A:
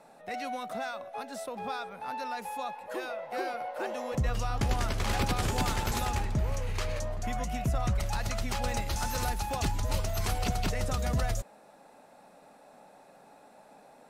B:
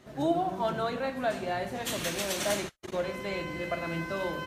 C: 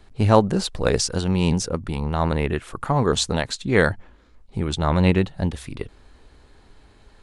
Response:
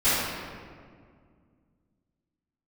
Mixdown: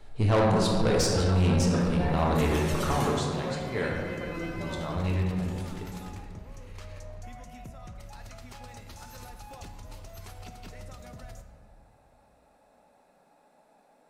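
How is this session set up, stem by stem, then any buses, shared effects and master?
−8.5 dB, 0.00 s, send −23 dB, downward compressor 4 to 1, threshold −34 dBFS, peak gain reduction 9.5 dB
−11.5 dB, 0.50 s, send −17 dB, automatic gain control gain up to 8 dB; through-zero flanger with one copy inverted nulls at 0.8 Hz, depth 1.6 ms
0:02.85 −5.5 dB → 0:03.20 −16.5 dB, 0.00 s, send −14 dB, no processing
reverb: on, RT60 2.0 s, pre-delay 3 ms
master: soft clipping −18 dBFS, distortion −11 dB

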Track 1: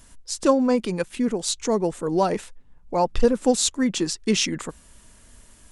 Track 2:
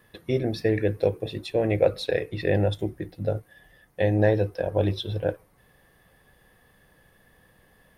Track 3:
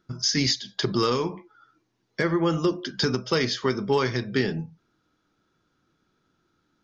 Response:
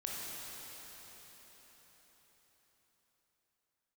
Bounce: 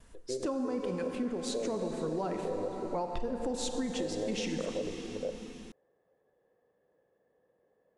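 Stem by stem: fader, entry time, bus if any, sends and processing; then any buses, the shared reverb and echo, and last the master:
−8.0 dB, 0.00 s, bus A, send −4.5 dB, noise gate with hold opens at −43 dBFS; high-shelf EQ 4,400 Hz −11 dB
−4.0 dB, 0.00 s, bus A, no send, resonant band-pass 480 Hz, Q 2.7
muted
bus A: 0.0 dB, brickwall limiter −24.5 dBFS, peak gain reduction 11.5 dB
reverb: on, RT60 5.1 s, pre-delay 18 ms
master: downward compressor, threshold −30 dBFS, peak gain reduction 8 dB

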